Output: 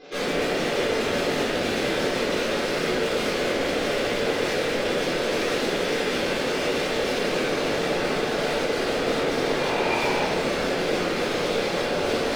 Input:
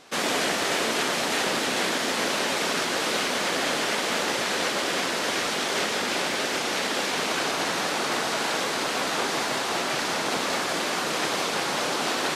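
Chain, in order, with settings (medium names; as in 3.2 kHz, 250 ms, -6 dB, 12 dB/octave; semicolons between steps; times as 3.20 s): spectral gate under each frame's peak -15 dB strong; ten-band graphic EQ 500 Hz +9 dB, 1 kHz -9 dB, 8 kHz -5 dB; in parallel at +1 dB: peak limiter -22 dBFS, peak gain reduction 9.5 dB; on the sum: hard clipper -26 dBFS, distortion -7 dB; 9.56–10.23 s: small resonant body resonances 920/2400 Hz, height 9 dB -> 12 dB, ringing for 20 ms; simulated room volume 440 m³, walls mixed, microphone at 3.8 m; trim -7.5 dB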